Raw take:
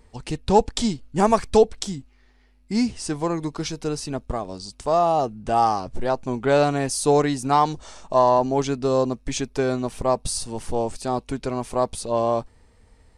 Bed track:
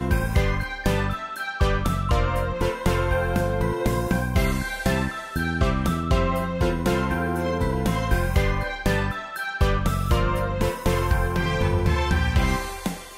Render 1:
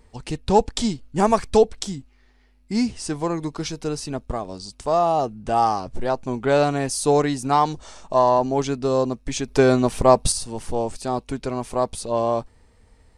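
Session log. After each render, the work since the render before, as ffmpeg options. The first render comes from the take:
-filter_complex "[0:a]asplit=3[a][b][c];[a]atrim=end=9.482[d];[b]atrim=start=9.478:end=10.322,asetpts=PTS-STARTPTS,volume=7dB[e];[c]atrim=start=10.318[f];[d][e]acrossfade=d=0.004:c1=hsin:c2=hsin[g];[g][f]acrossfade=d=0.004:c1=hsin:c2=hsin"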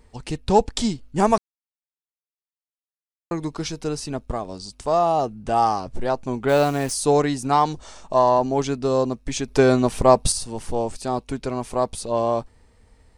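-filter_complex "[0:a]asplit=3[a][b][c];[a]afade=t=out:st=6.48:d=0.02[d];[b]acrusher=bits=7:dc=4:mix=0:aa=0.000001,afade=t=in:st=6.48:d=0.02,afade=t=out:st=6.93:d=0.02[e];[c]afade=t=in:st=6.93:d=0.02[f];[d][e][f]amix=inputs=3:normalize=0,asplit=3[g][h][i];[g]atrim=end=1.38,asetpts=PTS-STARTPTS,afade=t=out:st=1.376:d=0.004:c=hsin[j];[h]atrim=start=1.38:end=3.31,asetpts=PTS-STARTPTS,volume=0[k];[i]atrim=start=3.31,asetpts=PTS-STARTPTS,afade=t=in:d=0.004:c=hsin[l];[j][k][l]concat=n=3:v=0:a=1"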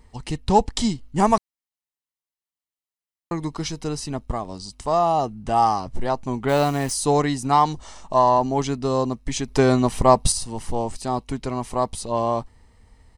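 -af "aecho=1:1:1:0.31"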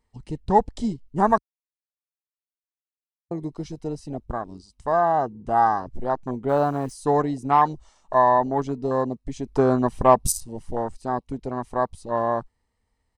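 -af "afwtdn=0.0501,lowshelf=f=210:g=-6.5"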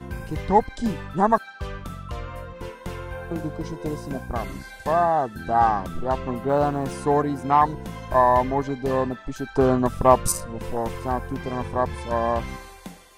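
-filter_complex "[1:a]volume=-11.5dB[a];[0:a][a]amix=inputs=2:normalize=0"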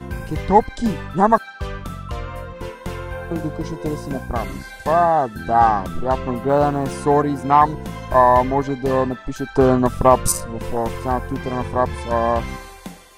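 -af "volume=4.5dB,alimiter=limit=-1dB:level=0:latency=1"

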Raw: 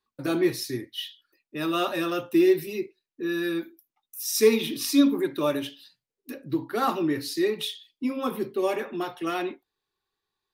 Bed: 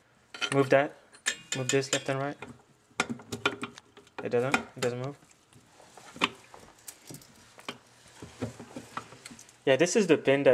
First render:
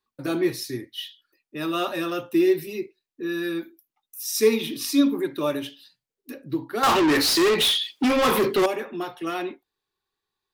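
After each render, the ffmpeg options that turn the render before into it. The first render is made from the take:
-filter_complex "[0:a]asettb=1/sr,asplit=3[a][b][c];[a]atrim=end=6.834[d];[b]atrim=start=6.83:end=8.66,asetpts=PTS-STARTPTS,afade=t=in:d=0.004:c=qsin,afade=t=out:st=1.826:d=0.004:c=qsin,asplit=2[e][f];[f]highpass=f=720:p=1,volume=31dB,asoftclip=type=tanh:threshold=-12.5dB[g];[e][g]amix=inputs=2:normalize=0,lowpass=f=7.2k:p=1,volume=-6dB[h];[c]atrim=start=8.656[i];[d][h]acrossfade=d=0.004:c1=hsin:c2=qsin[j];[j][i]acrossfade=d=0.004:c1=qsin:c2=hsin"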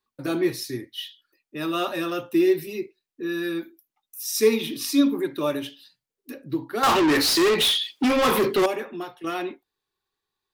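-filter_complex "[0:a]asplit=2[a][b];[a]atrim=end=9.24,asetpts=PTS-STARTPTS,afade=t=out:st=8.67:d=0.57:c=qsin:silence=0.334965[c];[b]atrim=start=9.24,asetpts=PTS-STARTPTS,afade=t=in:d=0.004:c=hsin:silence=0.334965[d];[c][d]concat=n=2:v=0:a=1"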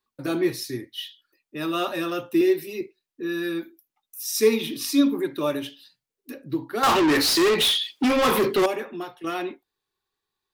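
-filter_complex "[0:a]asettb=1/sr,asplit=3[a][b][c];[a]atrim=end=2.414[d];[b]atrim=start=2.41:end=2.81,asetpts=PTS-STARTPTS,afade=t=in:d=0.004:c=qsin,afade=t=out:st=0.396:d=0.004:c=qsin,highpass=220[e];[c]atrim=start=2.806[f];[d][e]acrossfade=d=0.004:c1=hsin:c2=qsin[g];[g][f]acrossfade=d=0.004:c1=qsin:c2=hsin"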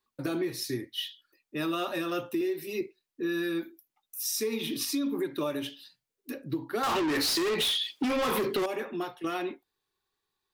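-af "alimiter=limit=-20dB:level=0:latency=1:release=240,acompressor=threshold=-26dB:ratio=6"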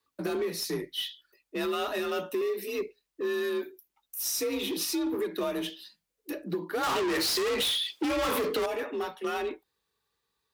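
-filter_complex "[0:a]asplit=2[a][b];[b]aeval=exprs='0.0211*(abs(mod(val(0)/0.0211+3,4)-2)-1)':c=same,volume=-8dB[c];[a][c]amix=inputs=2:normalize=0,afreqshift=43"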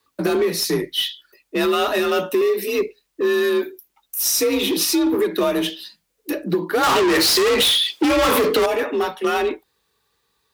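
-af "volume=11.5dB"

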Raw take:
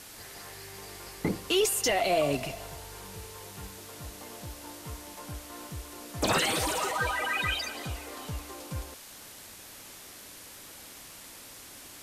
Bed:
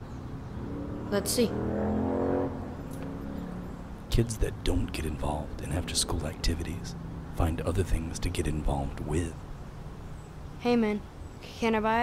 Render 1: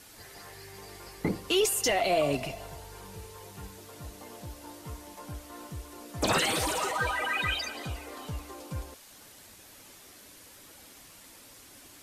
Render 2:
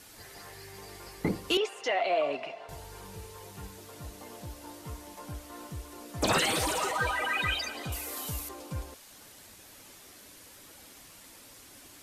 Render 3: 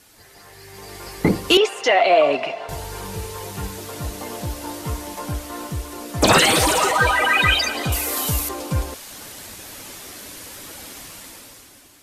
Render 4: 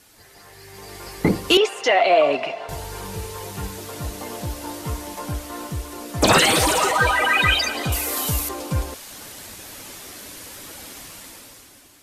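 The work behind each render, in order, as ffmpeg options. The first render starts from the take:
-af "afftdn=nr=6:nf=-48"
-filter_complex "[0:a]asettb=1/sr,asplit=3[a][b][c];[a]atrim=end=1.574[d];[b]atrim=start=1.57:end=2.69,asetpts=PTS-STARTPTS,afade=t=in:d=0.004:c=qsin,afade=t=out:st=1.116:d=0.004:c=qsin,highpass=480,lowpass=2.7k[e];[c]atrim=start=2.686[f];[d][e]acrossfade=d=0.004:c1=hsin:c2=qsin[g];[g][f]acrossfade=d=0.004:c1=qsin:c2=hsin,asettb=1/sr,asplit=3[h][i][j];[h]atrim=end=7.924[k];[i]atrim=start=7.92:end=8.49,asetpts=PTS-STARTPTS,afade=t=in:d=0.004:c=qsin,afade=t=out:st=0.566:d=0.004:c=qsin,aemphasis=mode=production:type=75fm[l];[j]atrim=start=8.486[m];[k][l]acrossfade=d=0.004:c1=hsin:c2=qsin[n];[n][m]acrossfade=d=0.004:c1=qsin:c2=hsin"
-af "dynaudnorm=f=160:g=11:m=14.5dB"
-af "volume=-1dB"

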